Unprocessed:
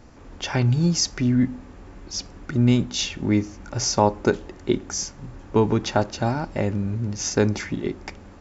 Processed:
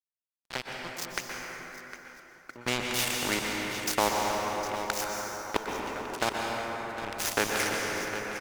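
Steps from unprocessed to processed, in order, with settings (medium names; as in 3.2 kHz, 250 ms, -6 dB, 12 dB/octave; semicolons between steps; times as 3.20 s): fade-in on the opening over 2.63 s; high-pass 510 Hz 12 dB/octave; resonant high shelf 3 kHz -11 dB, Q 1.5; in parallel at +0.5 dB: compression, threshold -35 dBFS, peak gain reduction 19.5 dB; on the sum: crossover distortion -32 dBFS; trance gate "..xxx..x." 62 bpm -24 dB; on a send: feedback delay 757 ms, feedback 24%, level -17 dB; on the sum: plate-style reverb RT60 3.1 s, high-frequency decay 0.6×, pre-delay 110 ms, DRR 2.5 dB; spectrum-flattening compressor 2:1; trim -3.5 dB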